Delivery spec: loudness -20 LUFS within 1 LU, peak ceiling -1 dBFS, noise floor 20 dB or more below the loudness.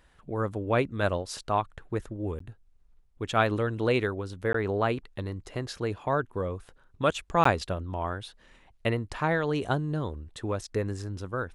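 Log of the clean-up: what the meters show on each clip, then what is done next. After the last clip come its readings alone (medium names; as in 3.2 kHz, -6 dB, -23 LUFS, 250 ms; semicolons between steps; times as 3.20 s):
dropouts 3; longest dropout 14 ms; loudness -30.0 LUFS; peak level -8.5 dBFS; loudness target -20.0 LUFS
-> interpolate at 2.39/4.53/7.44 s, 14 ms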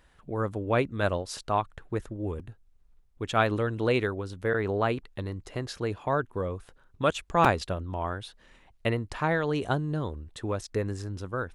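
dropouts 0; loudness -30.0 LUFS; peak level -8.5 dBFS; loudness target -20.0 LUFS
-> trim +10 dB; peak limiter -1 dBFS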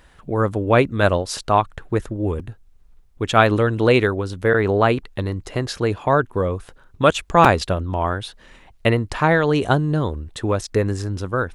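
loudness -20.0 LUFS; peak level -1.0 dBFS; noise floor -51 dBFS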